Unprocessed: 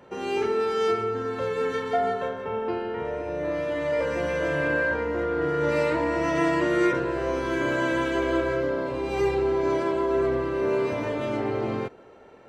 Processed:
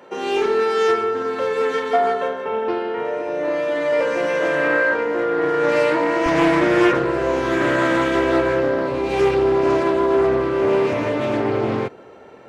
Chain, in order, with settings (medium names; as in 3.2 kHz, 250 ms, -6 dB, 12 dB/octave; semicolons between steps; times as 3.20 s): high-pass 280 Hz 12 dB/octave, from 6.26 s 80 Hz; loudspeaker Doppler distortion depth 0.28 ms; trim +7 dB